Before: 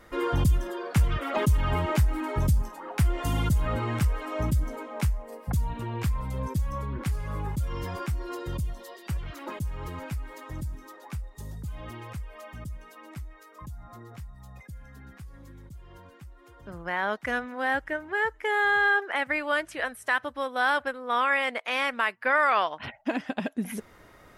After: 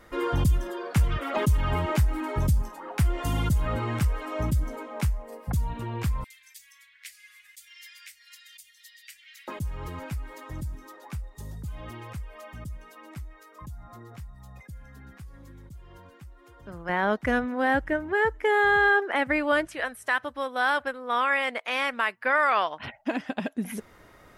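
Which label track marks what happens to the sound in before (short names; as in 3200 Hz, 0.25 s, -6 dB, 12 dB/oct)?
6.240000	9.480000	elliptic high-pass 1900 Hz, stop band 60 dB
16.890000	19.670000	low shelf 500 Hz +11.5 dB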